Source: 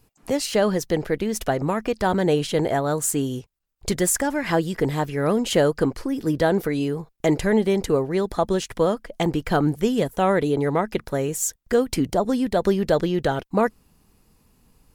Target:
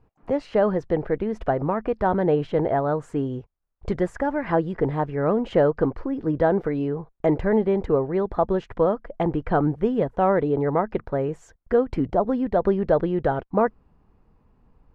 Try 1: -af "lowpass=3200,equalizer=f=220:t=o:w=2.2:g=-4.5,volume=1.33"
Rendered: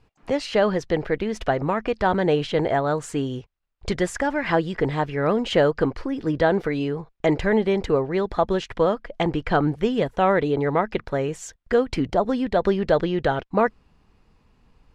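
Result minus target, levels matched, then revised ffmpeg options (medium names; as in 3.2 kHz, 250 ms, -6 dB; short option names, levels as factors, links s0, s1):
4 kHz band +14.0 dB
-af "lowpass=1200,equalizer=f=220:t=o:w=2.2:g=-4.5,volume=1.33"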